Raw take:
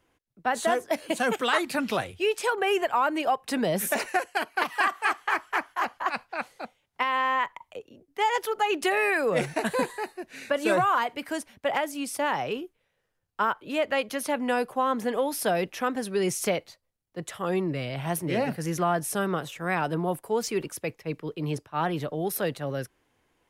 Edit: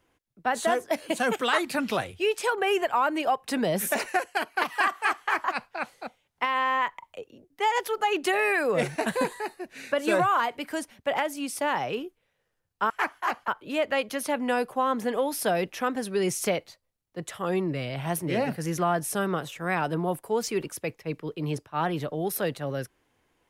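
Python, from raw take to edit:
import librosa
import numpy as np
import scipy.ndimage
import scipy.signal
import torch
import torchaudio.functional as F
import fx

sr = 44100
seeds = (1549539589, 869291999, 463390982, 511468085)

y = fx.edit(x, sr, fx.move(start_s=5.44, length_s=0.58, to_s=13.48), tone=tone)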